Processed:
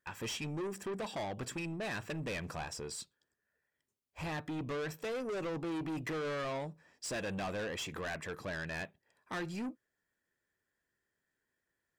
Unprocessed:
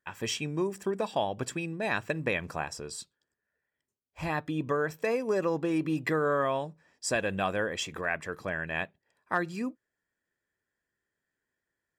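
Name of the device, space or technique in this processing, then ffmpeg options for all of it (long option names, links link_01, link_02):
saturation between pre-emphasis and de-emphasis: -af "highshelf=frequency=11000:gain=11,asoftclip=type=tanh:threshold=-35dB,highshelf=frequency=11000:gain=-11"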